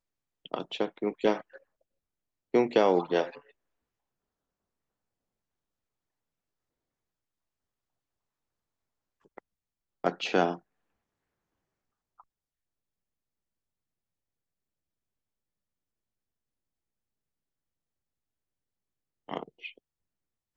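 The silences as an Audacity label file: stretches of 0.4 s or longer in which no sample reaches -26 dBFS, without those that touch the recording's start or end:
1.360000	2.540000	silence
3.240000	10.040000	silence
10.520000	19.310000	silence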